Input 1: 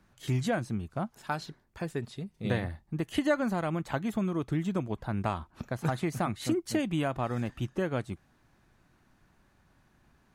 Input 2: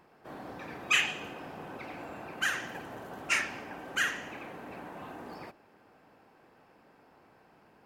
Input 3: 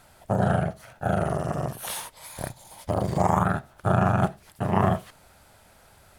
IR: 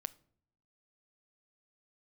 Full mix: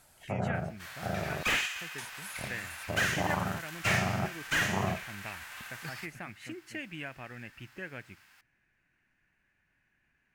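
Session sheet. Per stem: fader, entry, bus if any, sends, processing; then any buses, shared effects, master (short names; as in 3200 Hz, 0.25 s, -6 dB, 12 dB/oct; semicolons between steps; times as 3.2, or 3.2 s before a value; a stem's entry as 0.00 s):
-18.5 dB, 0.00 s, send -3 dB, band shelf 2100 Hz +15 dB 1.1 oct
-2.0 dB, 0.55 s, send -4.5 dB, spectral whitening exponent 0.6; resonant high-pass 1700 Hz, resonance Q 1.6
-10.0 dB, 0.00 s, muted 1.43–1.98, no send, treble ducked by the level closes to 1500 Hz, closed at -20.5 dBFS; high shelf 6000 Hz +10.5 dB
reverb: on, pre-delay 7 ms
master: bell 6800 Hz +2.5 dB; slew limiter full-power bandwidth 120 Hz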